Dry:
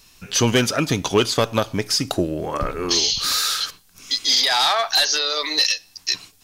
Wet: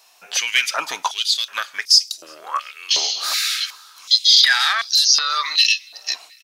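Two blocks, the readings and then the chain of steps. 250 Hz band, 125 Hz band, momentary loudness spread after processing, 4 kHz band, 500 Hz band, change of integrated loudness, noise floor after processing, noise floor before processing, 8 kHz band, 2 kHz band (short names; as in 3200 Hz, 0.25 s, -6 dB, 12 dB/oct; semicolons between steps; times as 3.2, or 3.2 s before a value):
under -25 dB, under -35 dB, 16 LU, +4.0 dB, -17.0 dB, +3.0 dB, -48 dBFS, -54 dBFS, +1.5 dB, +5.0 dB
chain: feedback echo 0.36 s, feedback 38%, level -23 dB; stepped high-pass 2.7 Hz 710–5000 Hz; gain -2 dB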